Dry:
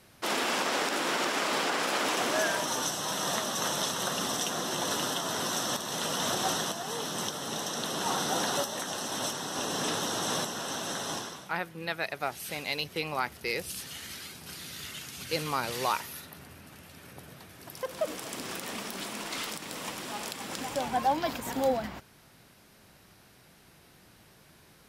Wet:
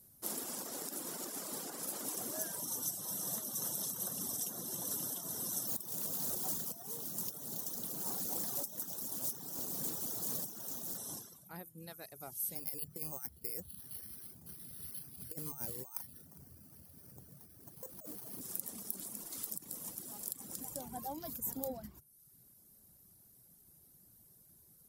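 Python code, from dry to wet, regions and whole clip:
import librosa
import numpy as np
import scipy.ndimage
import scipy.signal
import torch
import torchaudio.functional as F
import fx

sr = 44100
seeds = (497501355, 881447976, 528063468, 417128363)

y = fx.chain(x, sr, fx.resample_bad(factor=2, down='none', up='hold'),
    fx.doppler_dist(depth_ms=0.45), at=(5.67, 10.98))
y = fx.chain(y, sr, fx.over_compress(threshold_db=-33.0, ratio=-0.5),
    fx.echo_single(ms=406, db=-21.0),
    fx.resample_bad(factor=6, down='filtered', up='hold'), at=(12.55, 18.41))
y = fx.hum_notches(y, sr, base_hz=50, count=3)
y = fx.dereverb_blind(y, sr, rt60_s=0.85)
y = fx.curve_eq(y, sr, hz=(150.0, 2600.0, 13000.0), db=(0, -20, 14))
y = y * 10.0 ** (-5.5 / 20.0)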